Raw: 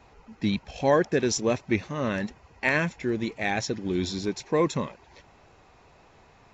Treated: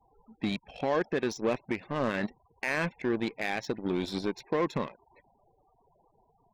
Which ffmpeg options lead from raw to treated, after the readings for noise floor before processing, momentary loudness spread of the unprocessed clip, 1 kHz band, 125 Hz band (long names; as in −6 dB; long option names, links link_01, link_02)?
−57 dBFS, 8 LU, −4.0 dB, −7.0 dB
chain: -af "alimiter=limit=-21dB:level=0:latency=1:release=101,lowpass=4200,afftfilt=real='re*gte(hypot(re,im),0.00501)':imag='im*gte(hypot(re,im),0.00501)':win_size=1024:overlap=0.75,aeval=exprs='0.0944*(cos(1*acos(clip(val(0)/0.0944,-1,1)))-cos(1*PI/2))+0.0106*(cos(3*acos(clip(val(0)/0.0944,-1,1)))-cos(3*PI/2))+0.00422*(cos(7*acos(clip(val(0)/0.0944,-1,1)))-cos(7*PI/2))':channel_layout=same,equalizer=frequency=69:width=0.74:gain=-11,volume=3.5dB"